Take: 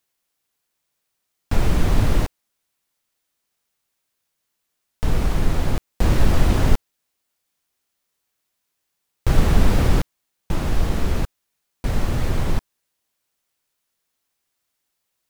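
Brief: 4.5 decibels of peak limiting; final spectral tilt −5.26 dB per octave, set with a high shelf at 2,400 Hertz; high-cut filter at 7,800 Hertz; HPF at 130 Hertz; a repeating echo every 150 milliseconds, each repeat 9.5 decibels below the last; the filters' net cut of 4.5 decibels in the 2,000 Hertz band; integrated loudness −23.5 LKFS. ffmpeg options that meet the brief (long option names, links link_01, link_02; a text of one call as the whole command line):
ffmpeg -i in.wav -af "highpass=130,lowpass=7800,equalizer=frequency=2000:width_type=o:gain=-9,highshelf=frequency=2400:gain=6,alimiter=limit=-15.5dB:level=0:latency=1,aecho=1:1:150|300|450|600:0.335|0.111|0.0365|0.012,volume=4.5dB" out.wav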